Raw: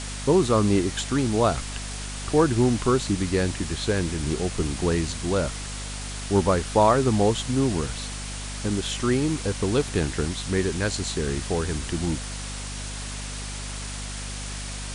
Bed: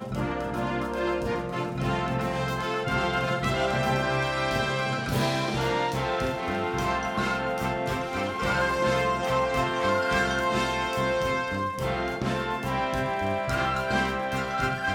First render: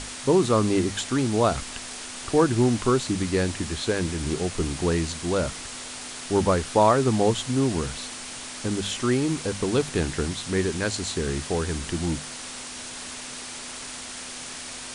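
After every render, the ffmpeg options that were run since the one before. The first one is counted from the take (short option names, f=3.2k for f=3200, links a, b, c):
-af "bandreject=f=50:t=h:w=6,bandreject=f=100:t=h:w=6,bandreject=f=150:t=h:w=6,bandreject=f=200:t=h:w=6"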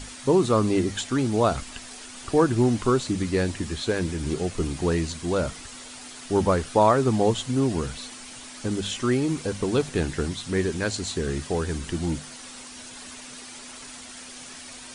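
-af "afftdn=nr=8:nf=-38"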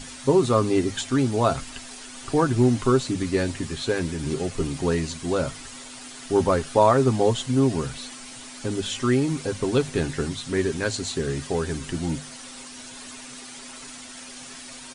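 -af "bandreject=f=50:t=h:w=6,bandreject=f=100:t=h:w=6,aecho=1:1:7.5:0.44"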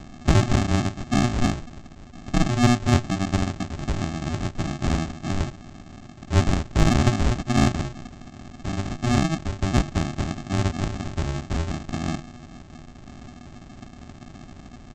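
-af "aresample=16000,acrusher=samples=33:mix=1:aa=0.000001,aresample=44100,aeval=exprs='0.531*(cos(1*acos(clip(val(0)/0.531,-1,1)))-cos(1*PI/2))+0.0596*(cos(4*acos(clip(val(0)/0.531,-1,1)))-cos(4*PI/2))+0.0119*(cos(5*acos(clip(val(0)/0.531,-1,1)))-cos(5*PI/2))+0.00841*(cos(7*acos(clip(val(0)/0.531,-1,1)))-cos(7*PI/2))':c=same"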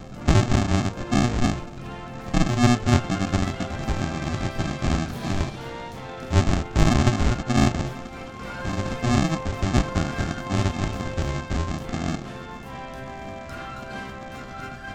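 -filter_complex "[1:a]volume=-9.5dB[a];[0:a][a]amix=inputs=2:normalize=0"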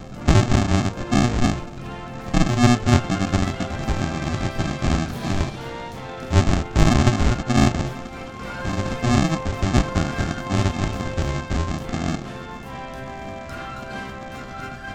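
-af "volume=2.5dB"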